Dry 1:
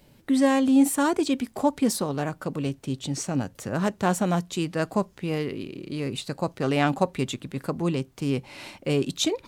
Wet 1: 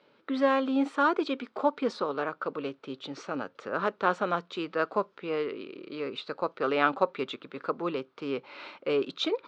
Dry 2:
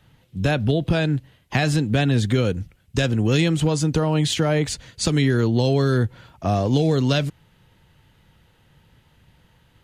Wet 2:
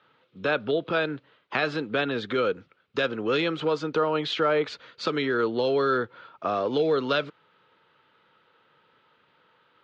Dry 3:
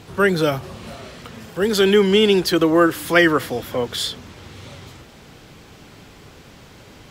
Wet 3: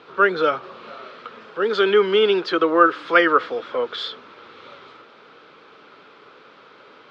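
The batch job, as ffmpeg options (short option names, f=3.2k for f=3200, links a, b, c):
-af "highpass=440,equalizer=f=450:t=q:w=4:g=4,equalizer=f=740:t=q:w=4:g=-6,equalizer=f=1.3k:t=q:w=4:g=9,equalizer=f=1.9k:t=q:w=4:g=-5,equalizer=f=2.9k:t=q:w=4:g=-4,lowpass=f=3.7k:w=0.5412,lowpass=f=3.7k:w=1.3066"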